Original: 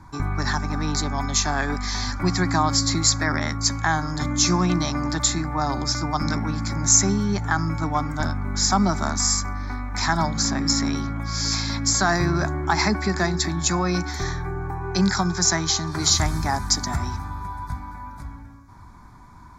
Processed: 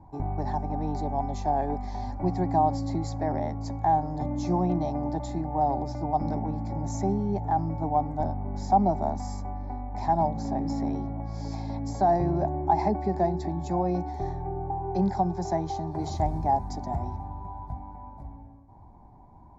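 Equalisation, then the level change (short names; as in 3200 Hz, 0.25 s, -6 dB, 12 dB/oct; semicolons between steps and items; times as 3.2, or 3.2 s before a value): EQ curve 250 Hz 0 dB, 800 Hz +10 dB, 1300 Hz -22 dB, 2000 Hz -15 dB, 6600 Hz -23 dB; -5.5 dB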